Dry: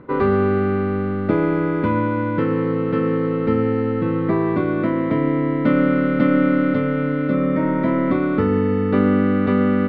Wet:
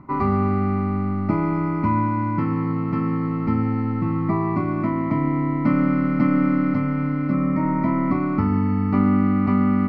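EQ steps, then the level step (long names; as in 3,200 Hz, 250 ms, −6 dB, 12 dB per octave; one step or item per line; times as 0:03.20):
parametric band 2,800 Hz −10.5 dB 0.46 octaves
phaser with its sweep stopped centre 2,400 Hz, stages 8
+2.0 dB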